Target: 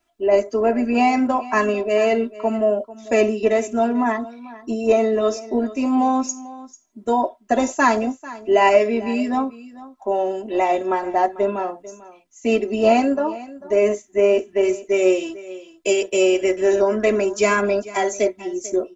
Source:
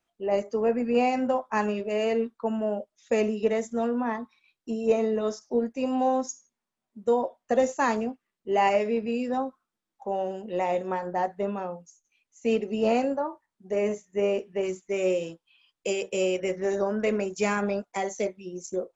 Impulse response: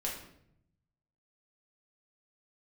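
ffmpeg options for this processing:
-filter_complex "[0:a]aecho=1:1:3:0.94,asplit=2[a][b];[b]aecho=0:1:444:0.126[c];[a][c]amix=inputs=2:normalize=0,volume=6dB"

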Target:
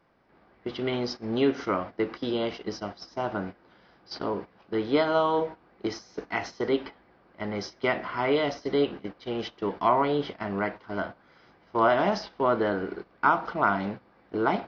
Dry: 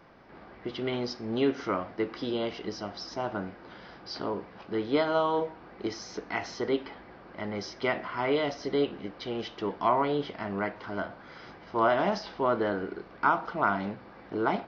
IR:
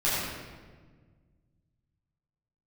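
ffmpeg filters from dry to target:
-af "agate=range=-13dB:threshold=-38dB:ratio=16:detection=peak,volume=2.5dB"

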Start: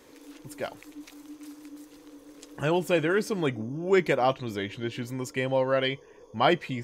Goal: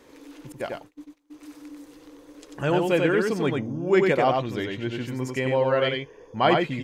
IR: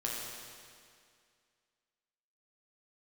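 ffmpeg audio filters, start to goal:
-filter_complex "[0:a]asettb=1/sr,asplit=3[a][b][c];[a]atrim=end=0.524[d];[b]atrim=start=0.52:end=1.34,asetpts=PTS-STARTPTS,afade=t=in:d=0.004:c=qsin,afade=t=out:st=0.816:d=0.004:c=qsin,agate=range=-27dB:threshold=-42dB:ratio=16:detection=peak[e];[c]atrim=start=1.336[f];[d][e]acrossfade=d=0.004:c1=hsin:c2=qsin[g];[g][f]acrossfade=d=0.004:c1=qsin:c2=hsin,highshelf=f=5.1k:g=-7,aecho=1:1:93:0.668,volume=2dB"

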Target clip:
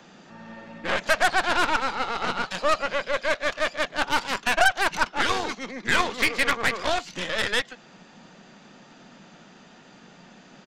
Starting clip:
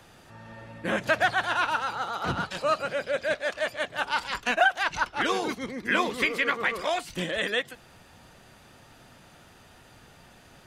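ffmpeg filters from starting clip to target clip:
-filter_complex "[0:a]aresample=16000,aresample=44100,acrossover=split=520|5400[a][b][c];[a]acompressor=threshold=-46dB:ratio=6[d];[d][b][c]amix=inputs=3:normalize=0,lowshelf=f=130:t=q:w=3:g=-13,aeval=exprs='0.299*(cos(1*acos(clip(val(0)/0.299,-1,1)))-cos(1*PI/2))+0.0422*(cos(8*acos(clip(val(0)/0.299,-1,1)))-cos(8*PI/2))':c=same,volume=2.5dB"

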